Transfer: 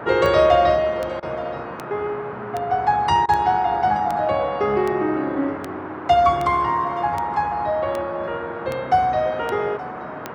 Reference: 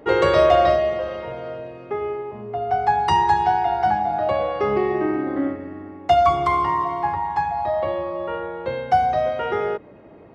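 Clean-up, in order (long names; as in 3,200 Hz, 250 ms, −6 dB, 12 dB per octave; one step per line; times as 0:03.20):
click removal
repair the gap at 0:01.20/0:03.26, 25 ms
noise reduction from a noise print 6 dB
echo removal 874 ms −18 dB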